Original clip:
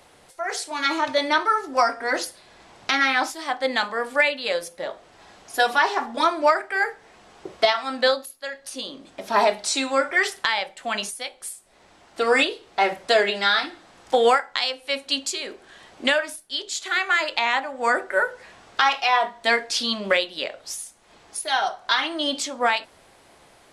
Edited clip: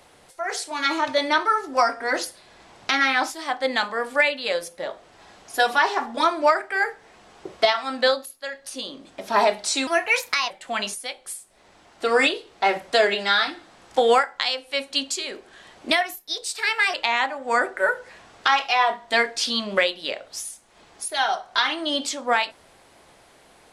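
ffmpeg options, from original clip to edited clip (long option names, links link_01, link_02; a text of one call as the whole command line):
ffmpeg -i in.wav -filter_complex "[0:a]asplit=5[link_01][link_02][link_03][link_04][link_05];[link_01]atrim=end=9.874[link_06];[link_02]atrim=start=9.87:end=10.66,asetpts=PTS-STARTPTS,asetrate=55125,aresample=44100,atrim=end_sample=27871,asetpts=PTS-STARTPTS[link_07];[link_03]atrim=start=10.656:end=16.064[link_08];[link_04]atrim=start=16.06:end=17.27,asetpts=PTS-STARTPTS,asetrate=51597,aresample=44100[link_09];[link_05]atrim=start=17.266[link_10];[link_06][link_07]acrossfade=duration=0.004:curve1=hsin:curve2=hsin[link_11];[link_11][link_08]acrossfade=duration=0.004:curve1=hsin:curve2=hsin[link_12];[link_12][link_09]acrossfade=duration=0.004:curve1=hsin:curve2=hsin[link_13];[link_13][link_10]acrossfade=duration=0.004:curve1=hsin:curve2=hsin" out.wav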